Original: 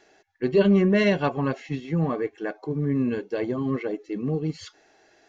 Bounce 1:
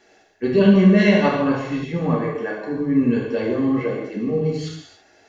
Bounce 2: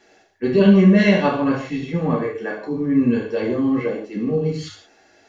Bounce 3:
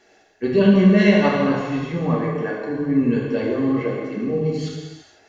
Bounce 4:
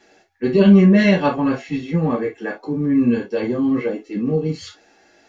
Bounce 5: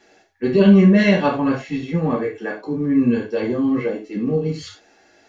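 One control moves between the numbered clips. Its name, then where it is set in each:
gated-style reverb, gate: 350 ms, 200 ms, 530 ms, 90 ms, 130 ms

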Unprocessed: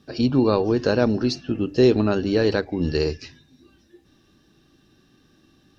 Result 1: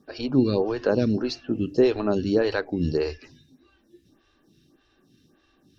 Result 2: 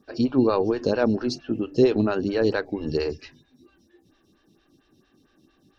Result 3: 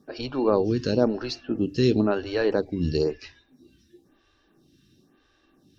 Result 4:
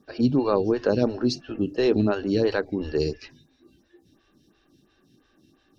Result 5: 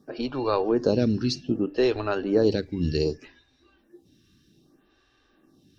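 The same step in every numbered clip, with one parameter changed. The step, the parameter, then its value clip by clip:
lamp-driven phase shifter, rate: 1.7 Hz, 4.4 Hz, 0.99 Hz, 2.9 Hz, 0.64 Hz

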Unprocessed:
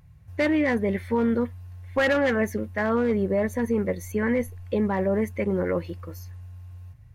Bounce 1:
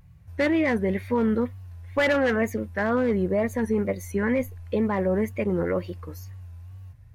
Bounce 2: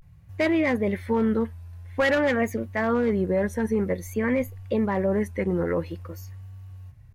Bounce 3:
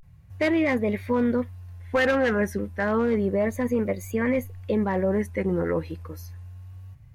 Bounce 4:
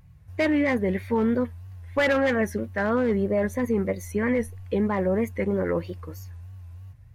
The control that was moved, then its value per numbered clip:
vibrato, rate: 2.1 Hz, 0.5 Hz, 0.31 Hz, 3.1 Hz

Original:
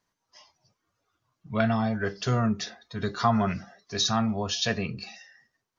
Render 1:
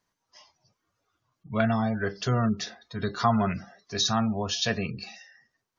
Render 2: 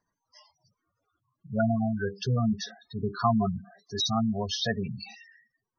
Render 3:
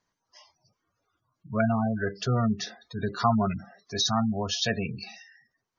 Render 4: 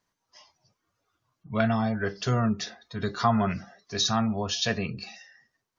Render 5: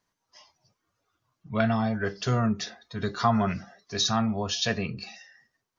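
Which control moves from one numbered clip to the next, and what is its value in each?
spectral gate, under each frame's peak: -35 dB, -10 dB, -20 dB, -45 dB, -60 dB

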